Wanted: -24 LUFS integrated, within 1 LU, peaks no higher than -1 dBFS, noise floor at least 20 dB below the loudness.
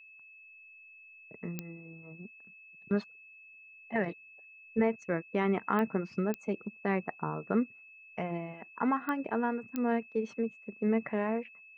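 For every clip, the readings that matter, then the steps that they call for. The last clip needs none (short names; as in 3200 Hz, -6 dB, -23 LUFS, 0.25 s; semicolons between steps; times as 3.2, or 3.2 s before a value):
clicks 5; steady tone 2600 Hz; tone level -52 dBFS; loudness -33.5 LUFS; peak -15.5 dBFS; loudness target -24.0 LUFS
-> de-click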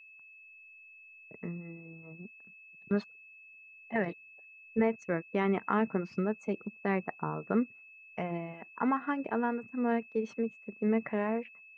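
clicks 0; steady tone 2600 Hz; tone level -52 dBFS
-> notch 2600 Hz, Q 30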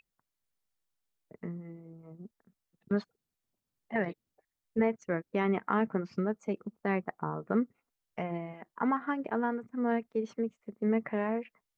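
steady tone none; loudness -33.5 LUFS; peak -15.5 dBFS; loudness target -24.0 LUFS
-> gain +9.5 dB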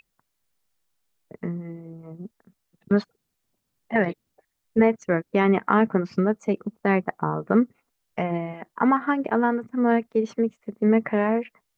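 loudness -24.0 LUFS; peak -6.0 dBFS; noise floor -78 dBFS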